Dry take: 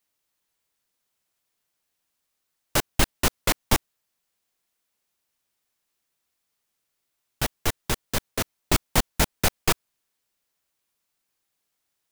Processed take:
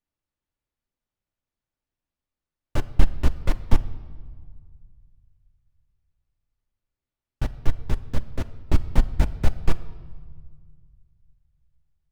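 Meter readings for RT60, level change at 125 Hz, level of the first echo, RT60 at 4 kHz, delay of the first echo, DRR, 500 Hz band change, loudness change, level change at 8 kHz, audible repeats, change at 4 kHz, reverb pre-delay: 1.8 s, +5.0 dB, no echo audible, 1.3 s, no echo audible, 10.0 dB, −6.0 dB, −2.5 dB, −20.0 dB, no echo audible, −14.5 dB, 3 ms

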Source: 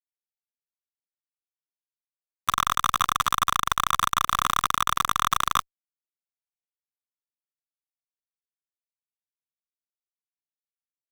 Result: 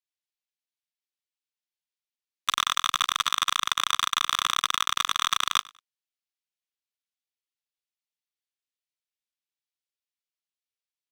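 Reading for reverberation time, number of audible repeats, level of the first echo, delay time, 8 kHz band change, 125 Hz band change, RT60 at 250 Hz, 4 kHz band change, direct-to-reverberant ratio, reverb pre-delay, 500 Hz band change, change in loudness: no reverb audible, 2, −22.5 dB, 98 ms, +0.5 dB, −12.5 dB, no reverb audible, +5.0 dB, no reverb audible, no reverb audible, −7.0 dB, −1.0 dB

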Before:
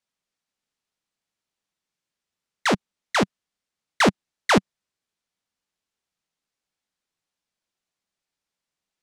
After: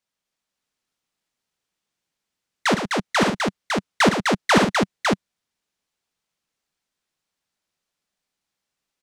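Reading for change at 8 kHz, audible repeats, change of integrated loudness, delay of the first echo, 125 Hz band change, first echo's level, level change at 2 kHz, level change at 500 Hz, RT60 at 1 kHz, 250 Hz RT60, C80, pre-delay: +4.0 dB, 4, +2.0 dB, 50 ms, +4.0 dB, −13.5 dB, +4.0 dB, +4.0 dB, no reverb audible, no reverb audible, no reverb audible, no reverb audible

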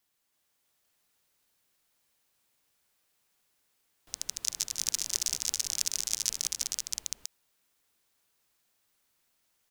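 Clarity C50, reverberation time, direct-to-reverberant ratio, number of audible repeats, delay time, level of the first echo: no reverb audible, no reverb audible, no reverb audible, 5, 150 ms, −17.0 dB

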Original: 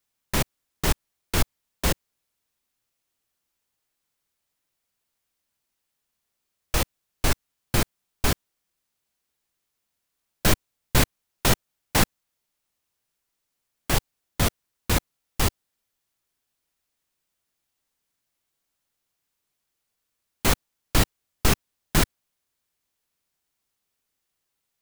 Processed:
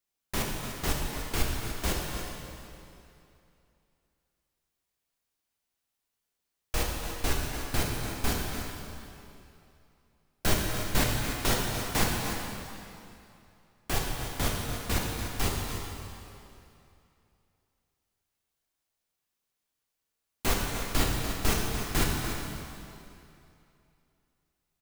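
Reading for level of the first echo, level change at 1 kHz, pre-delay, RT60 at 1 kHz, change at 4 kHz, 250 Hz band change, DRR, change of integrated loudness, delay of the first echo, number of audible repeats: −10.0 dB, −3.5 dB, 3 ms, 2.7 s, −4.0 dB, −4.0 dB, −2.5 dB, −5.0 dB, 293 ms, 1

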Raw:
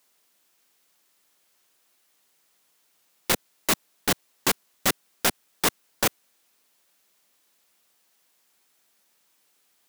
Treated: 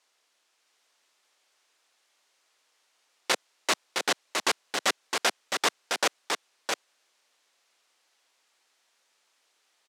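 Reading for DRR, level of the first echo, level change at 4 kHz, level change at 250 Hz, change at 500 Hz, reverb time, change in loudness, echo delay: no reverb audible, −4.5 dB, +1.0 dB, −7.5 dB, −1.0 dB, no reverb audible, −2.5 dB, 663 ms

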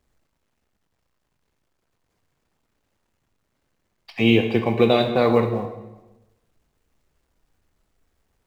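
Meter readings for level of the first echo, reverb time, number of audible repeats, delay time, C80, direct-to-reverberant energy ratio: no echo audible, 1.1 s, no echo audible, no echo audible, 10.0 dB, 5.0 dB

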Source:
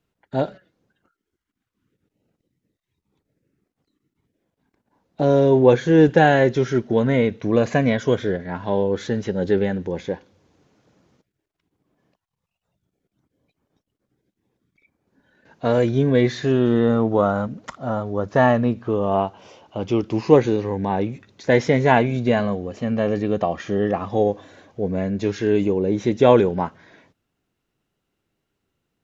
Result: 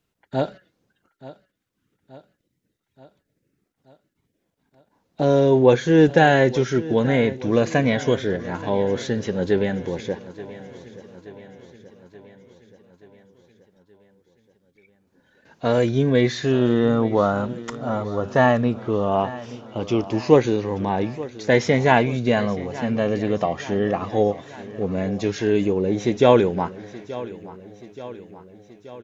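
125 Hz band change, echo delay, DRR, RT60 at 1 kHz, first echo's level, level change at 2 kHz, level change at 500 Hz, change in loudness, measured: −1.0 dB, 878 ms, no reverb audible, no reverb audible, −17.0 dB, +1.0 dB, −0.5 dB, −1.0 dB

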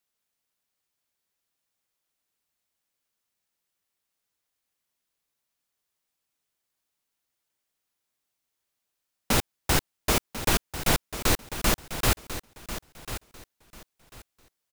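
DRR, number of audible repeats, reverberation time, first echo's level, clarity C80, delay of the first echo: no reverb audible, 2, no reverb audible, −12.0 dB, no reverb audible, 1,044 ms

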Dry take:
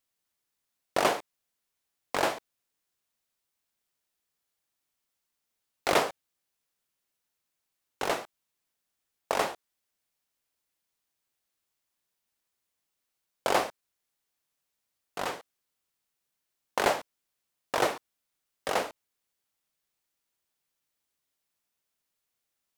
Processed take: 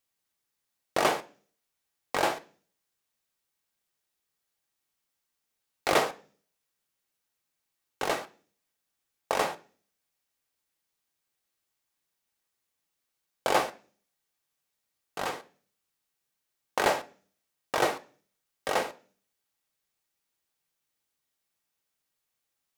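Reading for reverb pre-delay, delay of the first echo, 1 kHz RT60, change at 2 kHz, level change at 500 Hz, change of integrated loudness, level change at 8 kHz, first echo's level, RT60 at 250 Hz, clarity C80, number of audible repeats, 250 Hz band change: 3 ms, no echo audible, 0.35 s, +1.0 dB, +0.5 dB, +0.5 dB, +0.5 dB, no echo audible, 0.65 s, 24.0 dB, no echo audible, +0.5 dB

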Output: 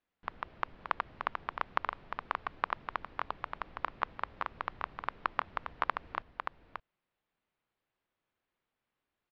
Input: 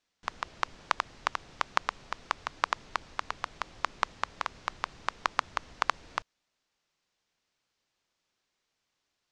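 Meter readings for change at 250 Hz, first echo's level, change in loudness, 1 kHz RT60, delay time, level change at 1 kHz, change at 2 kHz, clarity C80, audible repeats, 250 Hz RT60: −1.0 dB, −6.0 dB, −3.5 dB, no reverb audible, 577 ms, −2.5 dB, −4.0 dB, no reverb audible, 1, no reverb audible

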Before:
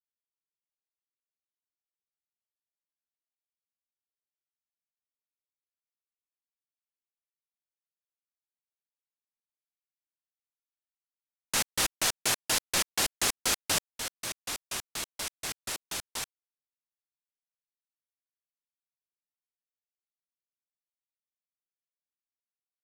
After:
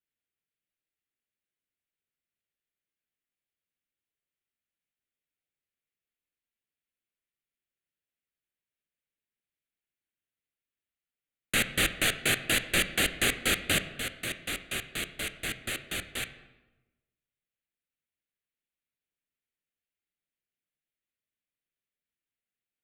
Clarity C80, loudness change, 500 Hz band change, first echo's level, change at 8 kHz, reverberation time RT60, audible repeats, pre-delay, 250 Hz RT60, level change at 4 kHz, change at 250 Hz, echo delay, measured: 14.5 dB, +1.0 dB, +4.0 dB, no echo audible, −3.5 dB, 1.1 s, no echo audible, 13 ms, 1.2 s, +1.5 dB, +7.0 dB, no echo audible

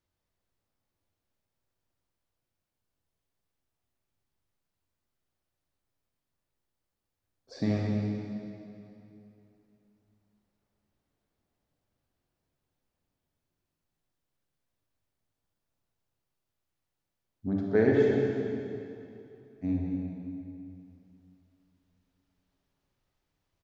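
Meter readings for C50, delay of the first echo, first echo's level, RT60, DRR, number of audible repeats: −1.5 dB, 213 ms, −9.5 dB, 2.8 s, −2.5 dB, 1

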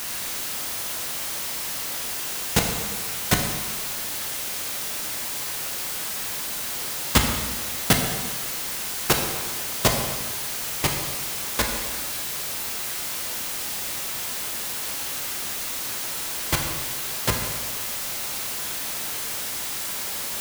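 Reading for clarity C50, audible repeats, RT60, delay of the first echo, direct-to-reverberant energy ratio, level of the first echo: 4.5 dB, no echo audible, 1.4 s, no echo audible, 1.5 dB, no echo audible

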